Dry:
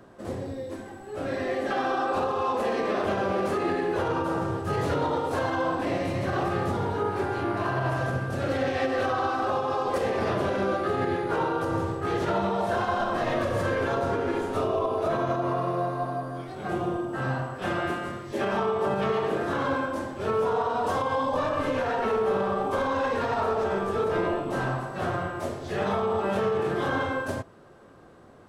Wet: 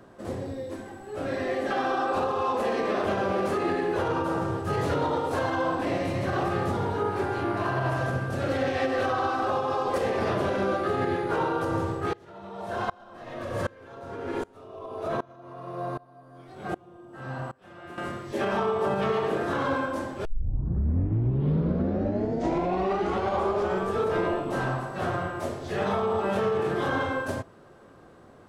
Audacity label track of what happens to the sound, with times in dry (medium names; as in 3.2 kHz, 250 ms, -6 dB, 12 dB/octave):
12.130000	17.980000	sawtooth tremolo in dB swelling 1.3 Hz, depth 27 dB
20.250000	20.250000	tape start 3.65 s